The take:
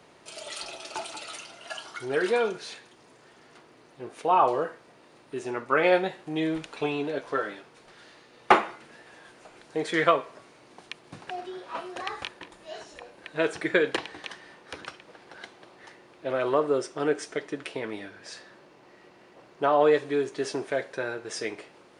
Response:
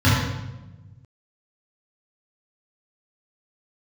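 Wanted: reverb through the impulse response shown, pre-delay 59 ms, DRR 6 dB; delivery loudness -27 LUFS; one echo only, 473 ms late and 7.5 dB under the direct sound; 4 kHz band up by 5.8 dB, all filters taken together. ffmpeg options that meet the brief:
-filter_complex "[0:a]equalizer=f=4000:t=o:g=7.5,aecho=1:1:473:0.422,asplit=2[s0][s1];[1:a]atrim=start_sample=2205,adelay=59[s2];[s1][s2]afir=irnorm=-1:irlink=0,volume=0.0447[s3];[s0][s3]amix=inputs=2:normalize=0,volume=0.944"

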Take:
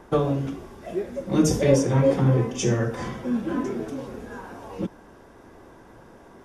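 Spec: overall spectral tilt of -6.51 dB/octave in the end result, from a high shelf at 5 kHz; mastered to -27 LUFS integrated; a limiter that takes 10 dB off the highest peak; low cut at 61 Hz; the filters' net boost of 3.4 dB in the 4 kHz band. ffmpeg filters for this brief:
-af "highpass=61,equalizer=f=4000:t=o:g=9,highshelf=f=5000:g=-7.5,volume=1.06,alimiter=limit=0.168:level=0:latency=1"

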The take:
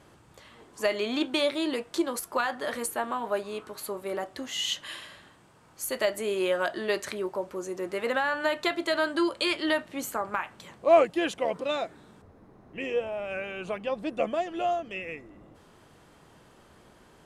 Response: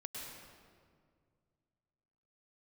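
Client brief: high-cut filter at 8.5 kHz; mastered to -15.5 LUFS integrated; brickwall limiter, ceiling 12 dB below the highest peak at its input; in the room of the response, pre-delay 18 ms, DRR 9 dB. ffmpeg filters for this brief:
-filter_complex "[0:a]lowpass=8500,alimiter=limit=0.0944:level=0:latency=1,asplit=2[s0][s1];[1:a]atrim=start_sample=2205,adelay=18[s2];[s1][s2]afir=irnorm=-1:irlink=0,volume=0.422[s3];[s0][s3]amix=inputs=2:normalize=0,volume=6.31"

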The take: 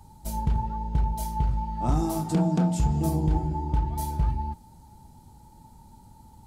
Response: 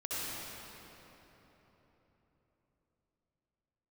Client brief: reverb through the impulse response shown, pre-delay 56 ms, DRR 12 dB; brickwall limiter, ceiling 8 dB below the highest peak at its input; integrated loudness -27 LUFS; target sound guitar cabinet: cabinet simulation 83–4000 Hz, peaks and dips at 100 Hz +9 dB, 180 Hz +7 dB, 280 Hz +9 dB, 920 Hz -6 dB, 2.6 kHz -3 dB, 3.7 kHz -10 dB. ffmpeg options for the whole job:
-filter_complex "[0:a]alimiter=limit=0.0891:level=0:latency=1,asplit=2[s0][s1];[1:a]atrim=start_sample=2205,adelay=56[s2];[s1][s2]afir=irnorm=-1:irlink=0,volume=0.141[s3];[s0][s3]amix=inputs=2:normalize=0,highpass=83,equalizer=f=100:t=q:w=4:g=9,equalizer=f=180:t=q:w=4:g=7,equalizer=f=280:t=q:w=4:g=9,equalizer=f=920:t=q:w=4:g=-6,equalizer=f=2600:t=q:w=4:g=-3,equalizer=f=3700:t=q:w=4:g=-10,lowpass=f=4000:w=0.5412,lowpass=f=4000:w=1.3066,volume=1.12"

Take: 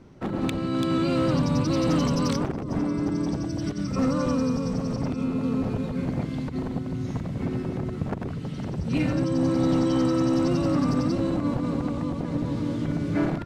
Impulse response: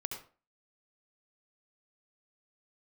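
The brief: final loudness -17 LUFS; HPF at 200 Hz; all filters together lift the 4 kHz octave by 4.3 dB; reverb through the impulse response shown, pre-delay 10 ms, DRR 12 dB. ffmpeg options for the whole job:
-filter_complex "[0:a]highpass=200,equalizer=f=4000:t=o:g=5.5,asplit=2[s0][s1];[1:a]atrim=start_sample=2205,adelay=10[s2];[s1][s2]afir=irnorm=-1:irlink=0,volume=0.237[s3];[s0][s3]amix=inputs=2:normalize=0,volume=3.35"

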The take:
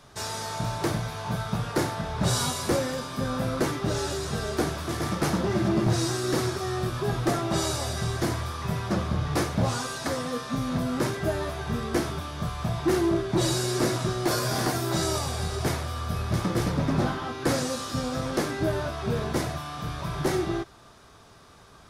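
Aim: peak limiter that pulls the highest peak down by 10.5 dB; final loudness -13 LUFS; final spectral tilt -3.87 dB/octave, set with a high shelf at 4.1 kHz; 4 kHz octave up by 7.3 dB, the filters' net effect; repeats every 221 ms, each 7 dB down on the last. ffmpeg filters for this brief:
-af "equalizer=f=4000:t=o:g=5.5,highshelf=f=4100:g=5.5,alimiter=limit=0.0794:level=0:latency=1,aecho=1:1:221|442|663|884|1105:0.447|0.201|0.0905|0.0407|0.0183,volume=6.68"

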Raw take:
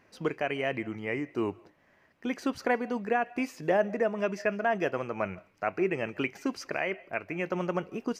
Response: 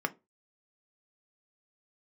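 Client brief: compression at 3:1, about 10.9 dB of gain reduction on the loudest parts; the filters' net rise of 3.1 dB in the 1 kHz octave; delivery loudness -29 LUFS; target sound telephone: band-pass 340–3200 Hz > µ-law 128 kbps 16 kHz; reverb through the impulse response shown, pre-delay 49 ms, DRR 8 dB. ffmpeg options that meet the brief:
-filter_complex "[0:a]equalizer=f=1000:t=o:g=5,acompressor=threshold=0.0178:ratio=3,asplit=2[s0][s1];[1:a]atrim=start_sample=2205,adelay=49[s2];[s1][s2]afir=irnorm=-1:irlink=0,volume=0.188[s3];[s0][s3]amix=inputs=2:normalize=0,highpass=340,lowpass=3200,volume=3.16" -ar 16000 -c:a pcm_mulaw

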